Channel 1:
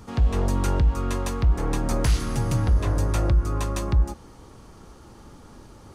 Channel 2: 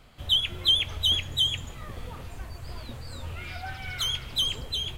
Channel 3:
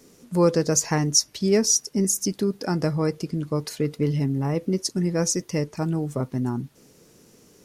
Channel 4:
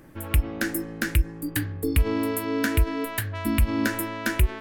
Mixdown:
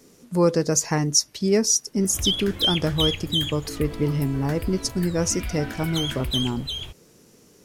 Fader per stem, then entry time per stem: mute, -0.5 dB, 0.0 dB, -11.5 dB; mute, 1.95 s, 0.00 s, 1.85 s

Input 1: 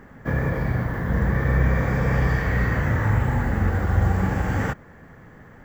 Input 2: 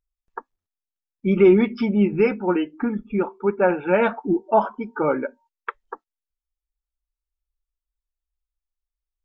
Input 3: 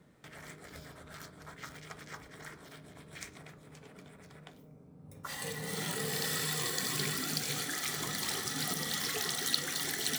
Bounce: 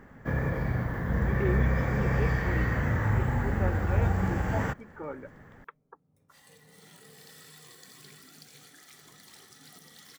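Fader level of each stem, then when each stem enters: -5.5 dB, -17.5 dB, -17.5 dB; 0.00 s, 0.00 s, 1.05 s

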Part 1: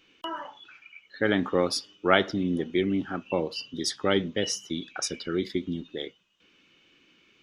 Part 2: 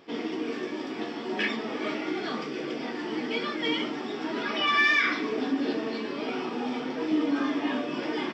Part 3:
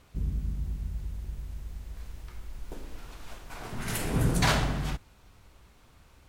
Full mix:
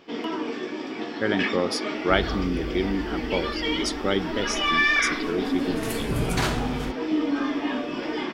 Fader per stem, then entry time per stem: -0.5 dB, +1.5 dB, -1.0 dB; 0.00 s, 0.00 s, 1.95 s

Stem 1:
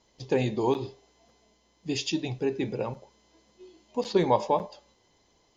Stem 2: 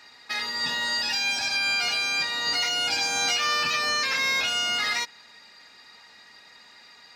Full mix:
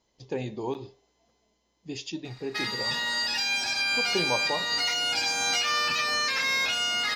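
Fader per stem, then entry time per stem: -6.5 dB, -1.5 dB; 0.00 s, 2.25 s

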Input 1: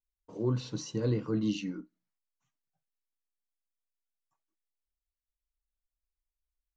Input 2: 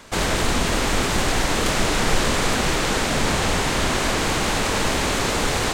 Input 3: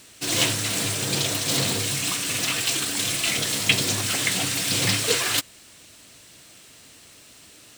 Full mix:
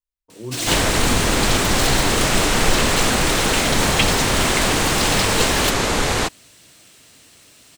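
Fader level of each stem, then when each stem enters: -2.0 dB, +2.5 dB, 0.0 dB; 0.00 s, 0.55 s, 0.30 s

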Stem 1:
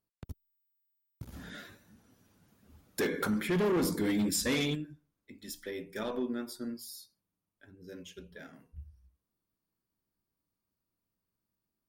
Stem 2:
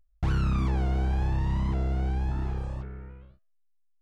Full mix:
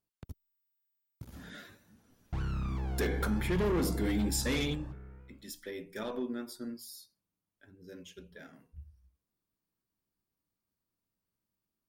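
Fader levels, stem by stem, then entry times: -2.0 dB, -9.0 dB; 0.00 s, 2.10 s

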